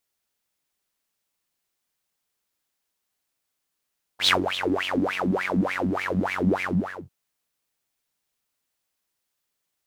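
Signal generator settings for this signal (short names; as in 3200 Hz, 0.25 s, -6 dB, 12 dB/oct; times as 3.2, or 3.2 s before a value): synth patch with filter wobble F#2, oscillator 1 saw, noise -6.5 dB, filter bandpass, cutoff 420 Hz, Q 11, filter envelope 1.5 oct, filter decay 1.20 s, filter sustain 45%, attack 92 ms, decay 0.12 s, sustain -12 dB, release 0.44 s, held 2.46 s, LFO 3.4 Hz, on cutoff 1.8 oct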